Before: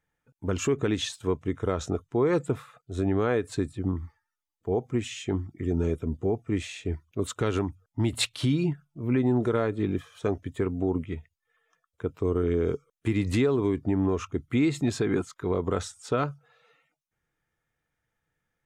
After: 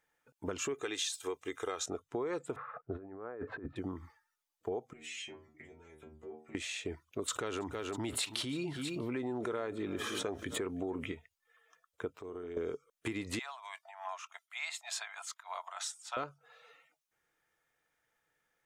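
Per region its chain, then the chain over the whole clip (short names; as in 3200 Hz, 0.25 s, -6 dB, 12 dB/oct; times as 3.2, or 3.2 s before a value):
0.74–1.86 tilt +3 dB/oct + comb 2.5 ms, depth 45%
2.56–3.76 LPF 1600 Hz 24 dB/oct + negative-ratio compressor -34 dBFS, ratio -0.5
4.93–6.55 bell 2100 Hz +7.5 dB 0.66 oct + compressor 12:1, threshold -32 dBFS + metallic resonator 75 Hz, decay 0.47 s, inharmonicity 0.002
7.28–11.12 feedback echo 0.322 s, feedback 37%, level -22 dB + fast leveller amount 70%
12.16–12.57 median filter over 3 samples + flutter echo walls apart 10.5 m, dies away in 0.3 s + compressor 2.5:1, threshold -47 dBFS
13.39–16.17 high shelf 4900 Hz +4.5 dB + tremolo triangle 3.3 Hz, depth 80% + rippled Chebyshev high-pass 640 Hz, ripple 3 dB
whole clip: tone controls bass -15 dB, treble +1 dB; compressor 4:1, threshold -39 dBFS; gain +3 dB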